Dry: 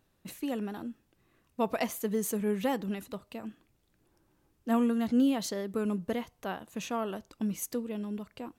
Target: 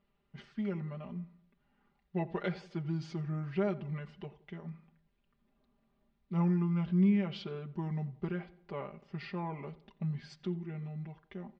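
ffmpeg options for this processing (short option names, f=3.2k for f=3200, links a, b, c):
-filter_complex "[0:a]lowpass=f=5.2k:w=0.5412,lowpass=f=5.2k:w=1.3066,aecho=1:1:3.7:0.91,asetrate=32634,aresample=44100,asplit=2[a][b];[b]adelay=87,lowpass=f=2.1k:p=1,volume=-18dB,asplit=2[c][d];[d]adelay=87,lowpass=f=2.1k:p=1,volume=0.49,asplit=2[e][f];[f]adelay=87,lowpass=f=2.1k:p=1,volume=0.49,asplit=2[g][h];[h]adelay=87,lowpass=f=2.1k:p=1,volume=0.49[i];[c][e][g][i]amix=inputs=4:normalize=0[j];[a][j]amix=inputs=2:normalize=0,volume=-7dB"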